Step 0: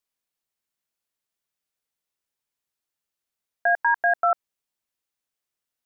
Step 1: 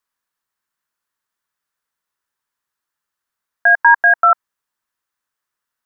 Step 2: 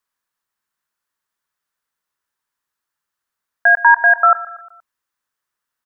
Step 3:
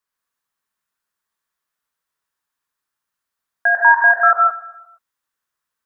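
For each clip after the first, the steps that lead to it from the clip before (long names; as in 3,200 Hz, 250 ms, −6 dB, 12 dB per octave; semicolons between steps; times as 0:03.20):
flat-topped bell 1,300 Hz +9.5 dB 1.2 octaves; level +2.5 dB
repeating echo 118 ms, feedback 51%, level −17.5 dB
reverb whose tail is shaped and stops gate 190 ms rising, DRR −0.5 dB; level −3.5 dB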